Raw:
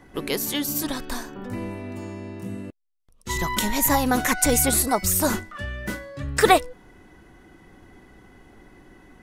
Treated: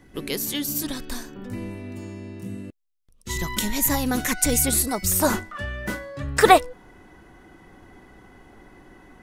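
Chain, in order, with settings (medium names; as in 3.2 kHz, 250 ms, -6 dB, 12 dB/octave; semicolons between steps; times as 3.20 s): peaking EQ 900 Hz -7.5 dB 1.8 oct, from 5.12 s +3.5 dB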